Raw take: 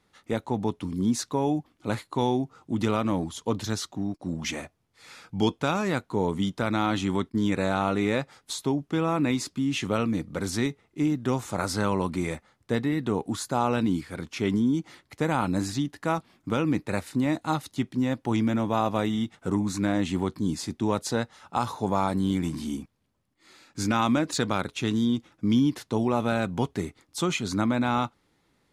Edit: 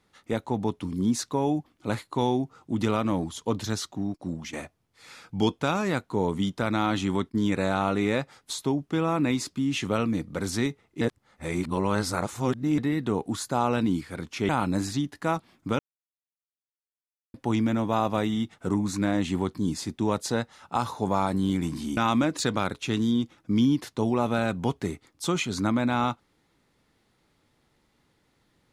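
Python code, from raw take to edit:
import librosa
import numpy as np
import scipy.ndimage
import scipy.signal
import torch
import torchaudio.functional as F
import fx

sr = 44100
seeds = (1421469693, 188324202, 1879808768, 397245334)

y = fx.edit(x, sr, fx.fade_out_to(start_s=4.18, length_s=0.35, curve='qsin', floor_db=-14.0),
    fx.reverse_span(start_s=11.01, length_s=1.77),
    fx.cut(start_s=14.49, length_s=0.81),
    fx.silence(start_s=16.6, length_s=1.55),
    fx.cut(start_s=22.78, length_s=1.13), tone=tone)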